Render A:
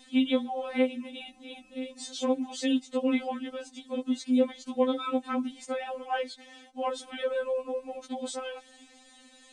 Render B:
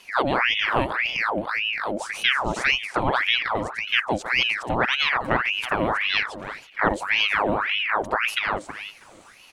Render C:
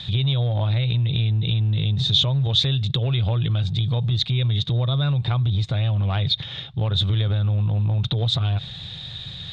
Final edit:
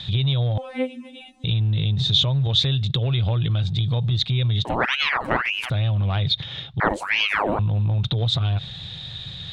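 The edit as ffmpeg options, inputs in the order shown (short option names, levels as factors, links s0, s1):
-filter_complex "[1:a]asplit=2[s0][s1];[2:a]asplit=4[s2][s3][s4][s5];[s2]atrim=end=0.582[s6];[0:a]atrim=start=0.578:end=1.442[s7];[s3]atrim=start=1.438:end=4.652[s8];[s0]atrim=start=4.648:end=5.702[s9];[s4]atrim=start=5.698:end=6.802[s10];[s1]atrim=start=6.798:end=7.592[s11];[s5]atrim=start=7.588[s12];[s6][s7]acrossfade=d=0.004:c1=hsin:c2=hsin[s13];[s13][s8]acrossfade=d=0.004:c1=hsin:c2=hsin[s14];[s14][s9]acrossfade=d=0.004:c1=hsin:c2=hsin[s15];[s15][s10]acrossfade=d=0.004:c1=hsin:c2=hsin[s16];[s16][s11]acrossfade=d=0.004:c1=hsin:c2=hsin[s17];[s17][s12]acrossfade=d=0.004:c1=hsin:c2=hsin"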